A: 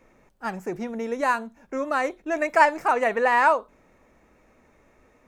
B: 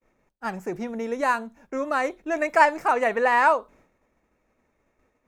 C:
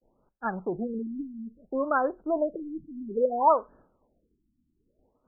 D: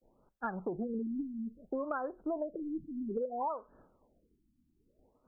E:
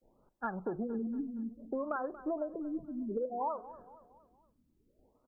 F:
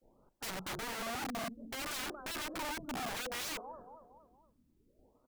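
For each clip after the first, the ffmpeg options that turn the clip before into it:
-af "agate=range=-33dB:threshold=-50dB:ratio=3:detection=peak"
-af "afftfilt=real='re*lt(b*sr/1024,320*pow(1800/320,0.5+0.5*sin(2*PI*0.6*pts/sr)))':imag='im*lt(b*sr/1024,320*pow(1800/320,0.5+0.5*sin(2*PI*0.6*pts/sr)))':win_size=1024:overlap=0.75"
-af "acompressor=threshold=-32dB:ratio=16"
-af "aecho=1:1:233|466|699|932:0.158|0.0729|0.0335|0.0154"
-af "aeval=exprs='(mod(66.8*val(0)+1,2)-1)/66.8':c=same,volume=1.5dB"

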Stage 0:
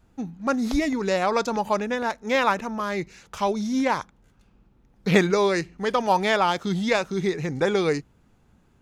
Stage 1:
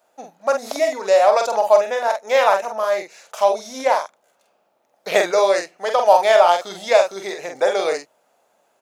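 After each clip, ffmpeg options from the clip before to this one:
-filter_complex "[0:a]highpass=f=620:t=q:w=5.4,highshelf=f=5.6k:g=10,asplit=2[a][b];[b]adelay=46,volume=-5dB[c];[a][c]amix=inputs=2:normalize=0,volume=-1dB"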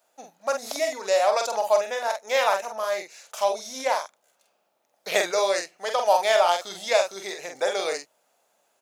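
-af "highshelf=f=2.2k:g=9,volume=-8dB"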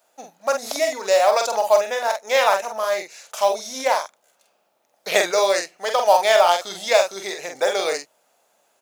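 -af "acrusher=bits=7:mode=log:mix=0:aa=0.000001,volume=4.5dB"

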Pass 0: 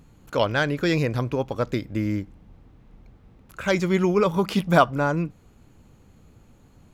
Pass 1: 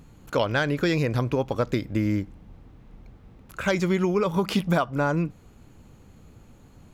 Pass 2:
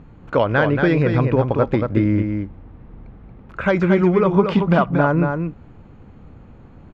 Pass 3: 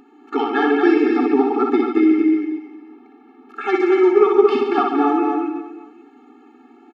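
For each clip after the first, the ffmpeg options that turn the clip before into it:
-af "acompressor=threshold=-21dB:ratio=12,volume=2.5dB"
-af "lowpass=2k,aecho=1:1:230:0.531,volume=6.5dB"
-af "aecho=1:1:60|138|239.4|371.2|542.6:0.631|0.398|0.251|0.158|0.1,afftfilt=real='re*eq(mod(floor(b*sr/1024/230),2),1)':imag='im*eq(mod(floor(b*sr/1024/230),2),1)':win_size=1024:overlap=0.75,volume=3.5dB"

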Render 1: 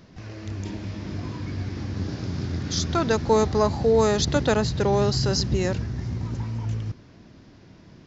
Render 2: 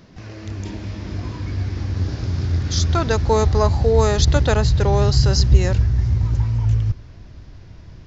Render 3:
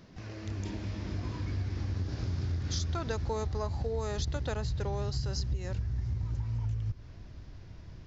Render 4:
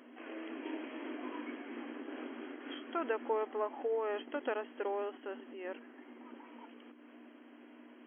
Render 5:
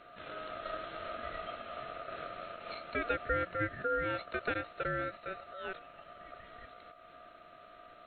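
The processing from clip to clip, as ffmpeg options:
-af "asubboost=boost=10:cutoff=70,volume=3dB"
-af "acompressor=threshold=-22dB:ratio=10,volume=-7dB"
-af "aeval=exprs='val(0)+0.00447*(sin(2*PI*60*n/s)+sin(2*PI*2*60*n/s)/2+sin(2*PI*3*60*n/s)/3+sin(2*PI*4*60*n/s)/4+sin(2*PI*5*60*n/s)/5)':c=same,afftfilt=real='re*between(b*sr/4096,230,3300)':imag='im*between(b*sr/4096,230,3300)':win_size=4096:overlap=0.75,volume=1.5dB"
-af "aeval=exprs='val(0)*sin(2*PI*950*n/s)':c=same,volume=4dB"

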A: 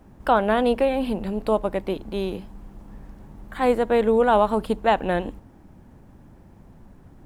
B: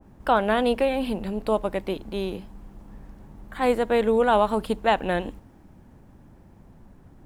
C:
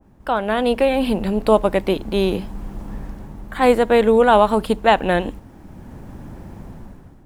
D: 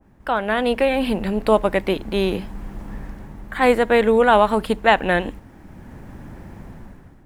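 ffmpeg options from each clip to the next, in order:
-af "adynamicequalizer=threshold=0.0251:dfrequency=1600:dqfactor=0.7:tfrequency=1600:tqfactor=0.7:attack=5:release=100:ratio=0.375:range=2:mode=boostabove:tftype=highshelf,volume=-2dB"
-af "dynaudnorm=f=180:g=7:m=16dB,volume=-1dB"
-af "equalizer=f=1.9k:w=1.5:g=6,volume=-2dB"

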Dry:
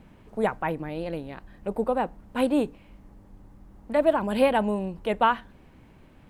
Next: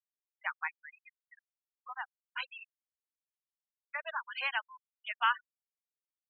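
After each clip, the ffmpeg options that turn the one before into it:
-af "highpass=f=1.3k:w=0.5412,highpass=f=1.3k:w=1.3066,afftfilt=real='re*gte(hypot(re,im),0.0282)':imag='im*gte(hypot(re,im),0.0282)':win_size=1024:overlap=0.75"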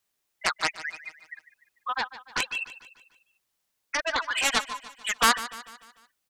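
-filter_complex "[0:a]asplit=2[a][b];[b]acompressor=threshold=-40dB:ratio=6,volume=1dB[c];[a][c]amix=inputs=2:normalize=0,aeval=exprs='0.178*(cos(1*acos(clip(val(0)/0.178,-1,1)))-cos(1*PI/2))+0.0794*(cos(7*acos(clip(val(0)/0.178,-1,1)))-cos(7*PI/2))':c=same,aecho=1:1:148|296|444|592|740:0.178|0.0871|0.0427|0.0209|0.0103,volume=4.5dB"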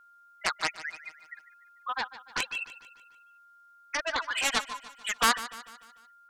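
-af "aeval=exprs='val(0)+0.00251*sin(2*PI*1400*n/s)':c=same,volume=-3dB"

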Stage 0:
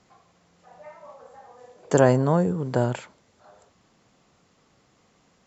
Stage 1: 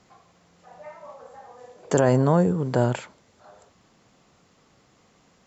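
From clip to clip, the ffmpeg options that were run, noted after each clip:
-af "alimiter=level_in=9.5dB:limit=-1dB:release=50:level=0:latency=1,volume=-7dB"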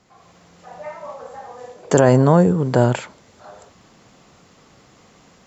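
-af "dynaudnorm=f=130:g=3:m=9dB"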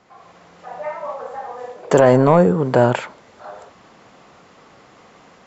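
-filter_complex "[0:a]asplit=2[a][b];[b]highpass=f=720:p=1,volume=13dB,asoftclip=type=tanh:threshold=-1.5dB[c];[a][c]amix=inputs=2:normalize=0,lowpass=f=1.4k:p=1,volume=-6dB,volume=1dB"

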